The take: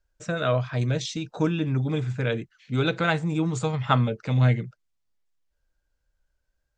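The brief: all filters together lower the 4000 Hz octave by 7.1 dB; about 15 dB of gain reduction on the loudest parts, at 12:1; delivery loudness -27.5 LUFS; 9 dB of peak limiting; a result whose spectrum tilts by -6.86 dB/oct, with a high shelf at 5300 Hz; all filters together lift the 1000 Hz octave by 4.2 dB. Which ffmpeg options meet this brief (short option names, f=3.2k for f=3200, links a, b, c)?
-af "equalizer=f=1k:t=o:g=6.5,equalizer=f=4k:t=o:g=-6,highshelf=f=5.3k:g=-8,acompressor=threshold=-27dB:ratio=12,volume=6.5dB,alimiter=limit=-17dB:level=0:latency=1"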